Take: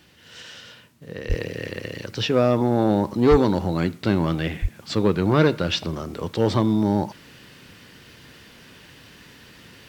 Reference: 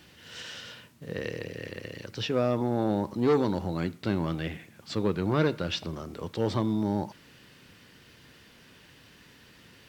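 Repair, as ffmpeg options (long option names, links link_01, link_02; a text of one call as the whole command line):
ffmpeg -i in.wav -filter_complex "[0:a]asplit=3[link_01][link_02][link_03];[link_01]afade=type=out:start_time=1.28:duration=0.02[link_04];[link_02]highpass=frequency=140:width=0.5412,highpass=frequency=140:width=1.3066,afade=type=in:start_time=1.28:duration=0.02,afade=type=out:start_time=1.4:duration=0.02[link_05];[link_03]afade=type=in:start_time=1.4:duration=0.02[link_06];[link_04][link_05][link_06]amix=inputs=3:normalize=0,asplit=3[link_07][link_08][link_09];[link_07]afade=type=out:start_time=3.3:duration=0.02[link_10];[link_08]highpass=frequency=140:width=0.5412,highpass=frequency=140:width=1.3066,afade=type=in:start_time=3.3:duration=0.02,afade=type=out:start_time=3.42:duration=0.02[link_11];[link_09]afade=type=in:start_time=3.42:duration=0.02[link_12];[link_10][link_11][link_12]amix=inputs=3:normalize=0,asplit=3[link_13][link_14][link_15];[link_13]afade=type=out:start_time=4.61:duration=0.02[link_16];[link_14]highpass=frequency=140:width=0.5412,highpass=frequency=140:width=1.3066,afade=type=in:start_time=4.61:duration=0.02,afade=type=out:start_time=4.73:duration=0.02[link_17];[link_15]afade=type=in:start_time=4.73:duration=0.02[link_18];[link_16][link_17][link_18]amix=inputs=3:normalize=0,asetnsamples=nb_out_samples=441:pad=0,asendcmd='1.3 volume volume -7.5dB',volume=0dB" out.wav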